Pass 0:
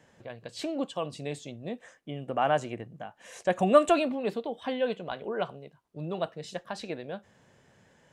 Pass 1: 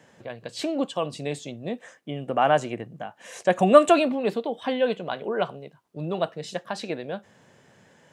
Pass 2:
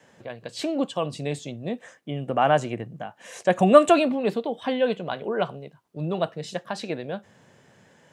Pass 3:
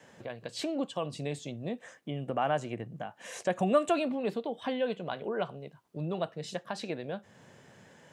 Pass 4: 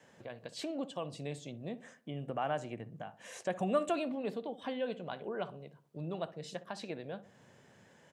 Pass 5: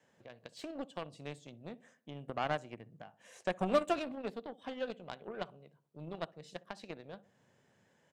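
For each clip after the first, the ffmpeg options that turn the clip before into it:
-af "highpass=110,volume=1.88"
-af "adynamicequalizer=threshold=0.01:dfrequency=110:dqfactor=0.84:tfrequency=110:tqfactor=0.84:attack=5:release=100:ratio=0.375:range=2.5:mode=boostabove:tftype=bell"
-af "acompressor=threshold=0.00794:ratio=1.5"
-filter_complex "[0:a]asplit=2[s0][s1];[s1]adelay=63,lowpass=f=940:p=1,volume=0.211,asplit=2[s2][s3];[s3]adelay=63,lowpass=f=940:p=1,volume=0.5,asplit=2[s4][s5];[s5]adelay=63,lowpass=f=940:p=1,volume=0.5,asplit=2[s6][s7];[s7]adelay=63,lowpass=f=940:p=1,volume=0.5,asplit=2[s8][s9];[s9]adelay=63,lowpass=f=940:p=1,volume=0.5[s10];[s0][s2][s4][s6][s8][s10]amix=inputs=6:normalize=0,volume=0.531"
-af "aeval=exprs='0.119*(cos(1*acos(clip(val(0)/0.119,-1,1)))-cos(1*PI/2))+0.0119*(cos(7*acos(clip(val(0)/0.119,-1,1)))-cos(7*PI/2))':c=same,volume=1.19"

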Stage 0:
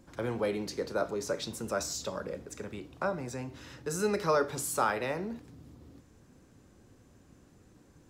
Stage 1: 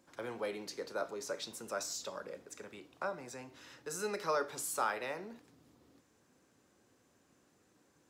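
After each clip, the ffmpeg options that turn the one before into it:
-af "highpass=f=540:p=1,volume=0.631"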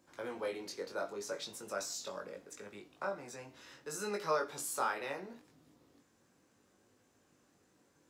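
-af "flanger=delay=19.5:depth=2.3:speed=0.71,volume=1.33"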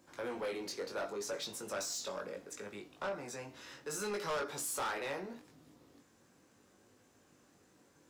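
-af "asoftclip=type=tanh:threshold=0.0141,volume=1.58"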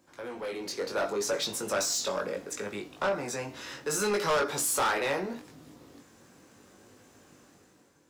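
-af "dynaudnorm=f=210:g=7:m=3.16"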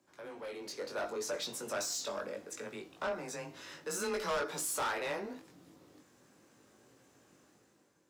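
-af "afreqshift=20,volume=0.422"

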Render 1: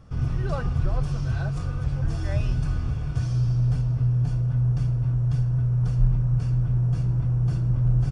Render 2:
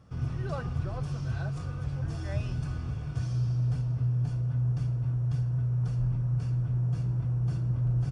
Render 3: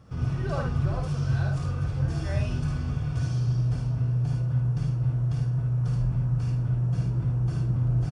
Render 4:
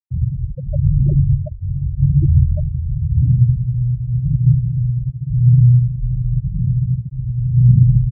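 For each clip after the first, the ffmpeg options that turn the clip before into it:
-af "highpass=70,volume=0.562"
-af "aecho=1:1:53|74:0.596|0.473,volume=1.5"
-af "aecho=1:1:210|399|569.1|722.2|860:0.631|0.398|0.251|0.158|0.1,aphaser=in_gain=1:out_gain=1:delay=2.2:decay=0.62:speed=0.9:type=sinusoidal,afftfilt=real='re*gte(hypot(re,im),0.316)':imag='im*gte(hypot(re,im),0.316)':win_size=1024:overlap=0.75,volume=1.78"

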